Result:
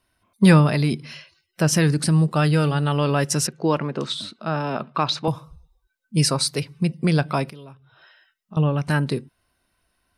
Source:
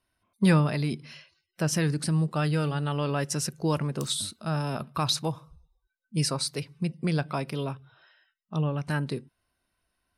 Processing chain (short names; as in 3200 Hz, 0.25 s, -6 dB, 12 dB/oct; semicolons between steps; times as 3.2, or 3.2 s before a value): 3.47–5.28 BPF 210–3300 Hz; 7.48–8.57 compressor 8:1, threshold -47 dBFS, peak gain reduction 18.5 dB; gain +7.5 dB